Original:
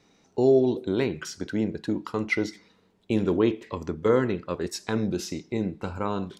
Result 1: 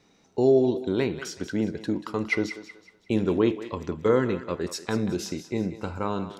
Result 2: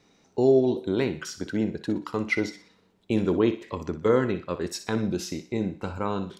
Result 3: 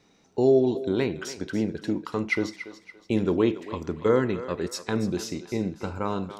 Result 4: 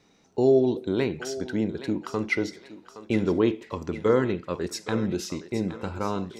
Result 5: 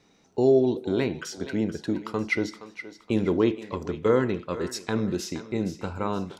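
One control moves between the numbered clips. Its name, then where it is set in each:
thinning echo, time: 186 ms, 61 ms, 284 ms, 818 ms, 470 ms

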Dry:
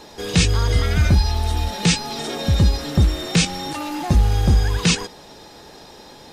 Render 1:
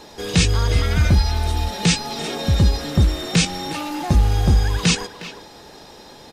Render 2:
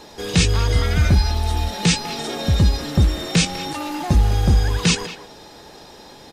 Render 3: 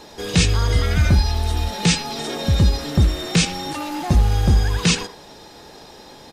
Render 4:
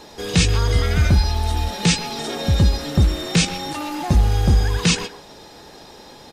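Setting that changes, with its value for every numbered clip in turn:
speakerphone echo, time: 360 ms, 200 ms, 80 ms, 130 ms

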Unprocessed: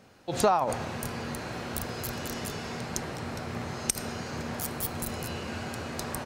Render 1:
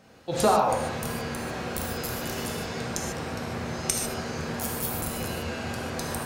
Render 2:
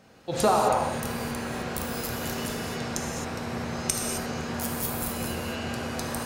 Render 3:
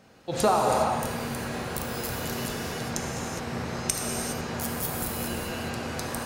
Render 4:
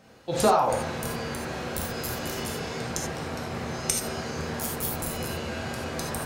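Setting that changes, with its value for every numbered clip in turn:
gated-style reverb, gate: 170 ms, 290 ms, 440 ms, 110 ms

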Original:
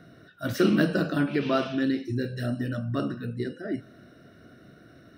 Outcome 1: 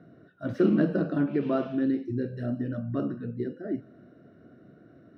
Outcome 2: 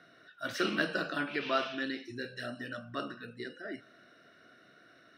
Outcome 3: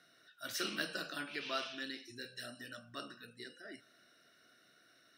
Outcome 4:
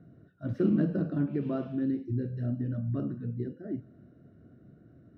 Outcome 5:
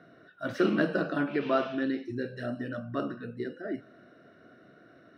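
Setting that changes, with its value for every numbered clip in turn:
band-pass filter, frequency: 300 Hz, 2.4 kHz, 7.4 kHz, 100 Hz, 850 Hz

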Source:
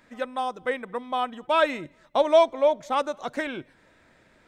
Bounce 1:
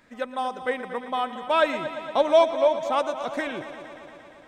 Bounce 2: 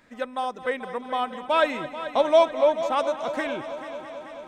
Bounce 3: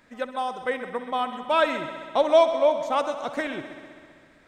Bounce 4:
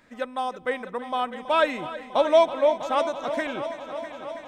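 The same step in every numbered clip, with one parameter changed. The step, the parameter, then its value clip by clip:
multi-head delay, time: 116 ms, 218 ms, 65 ms, 325 ms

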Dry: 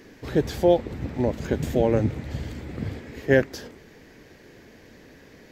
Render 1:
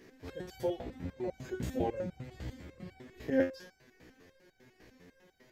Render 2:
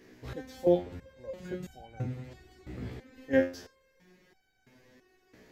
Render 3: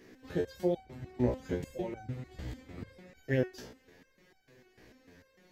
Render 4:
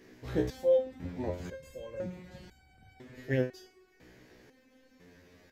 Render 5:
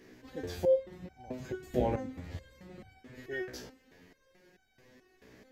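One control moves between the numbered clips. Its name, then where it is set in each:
resonator arpeggio, rate: 10 Hz, 3 Hz, 6.7 Hz, 2 Hz, 4.6 Hz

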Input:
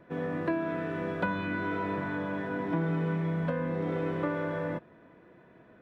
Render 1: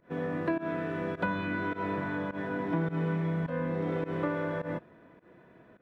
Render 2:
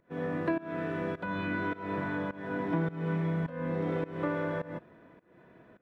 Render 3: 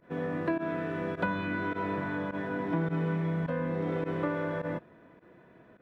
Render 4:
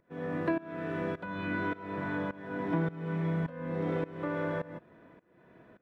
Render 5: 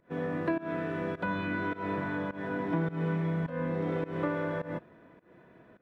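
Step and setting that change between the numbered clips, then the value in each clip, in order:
volume shaper, release: 112 ms, 311 ms, 63 ms, 509 ms, 190 ms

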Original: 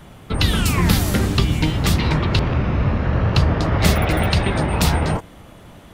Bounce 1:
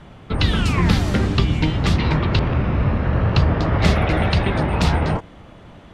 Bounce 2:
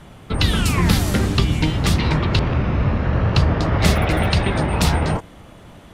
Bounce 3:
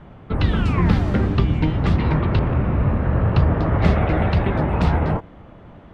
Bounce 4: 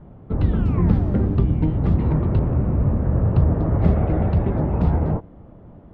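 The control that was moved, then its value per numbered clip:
Bessel low-pass, frequency: 4 kHz, 11 kHz, 1.5 kHz, 530 Hz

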